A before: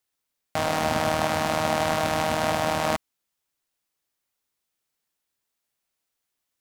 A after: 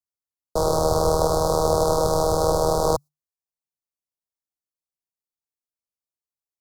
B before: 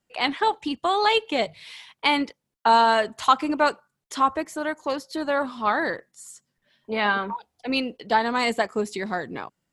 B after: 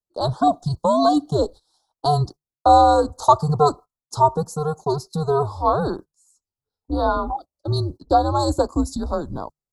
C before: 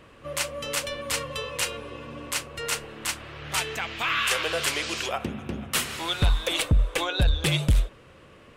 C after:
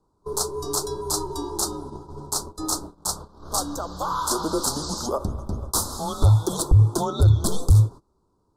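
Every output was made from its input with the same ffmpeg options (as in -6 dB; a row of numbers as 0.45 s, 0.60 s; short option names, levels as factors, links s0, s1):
-af "agate=range=0.0891:threshold=0.0126:ratio=16:detection=peak,afreqshift=-150,asuperstop=centerf=2300:order=8:qfactor=0.75,volume=1.78"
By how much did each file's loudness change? +3.5 LU, +3.5 LU, +3.5 LU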